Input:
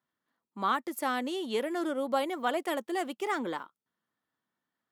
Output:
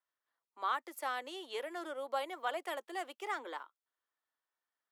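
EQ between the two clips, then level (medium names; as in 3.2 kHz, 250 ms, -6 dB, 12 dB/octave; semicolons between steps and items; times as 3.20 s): Bessel high-pass 590 Hz, order 8; treble shelf 5 kHz -4.5 dB; -4.5 dB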